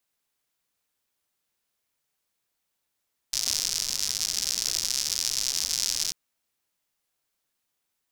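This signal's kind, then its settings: rain from filtered ticks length 2.79 s, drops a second 140, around 5.4 kHz, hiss -19.5 dB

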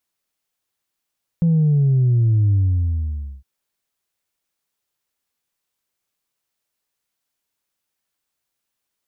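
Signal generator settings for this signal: sub drop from 170 Hz, over 2.01 s, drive 0.5 dB, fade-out 0.90 s, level -13 dB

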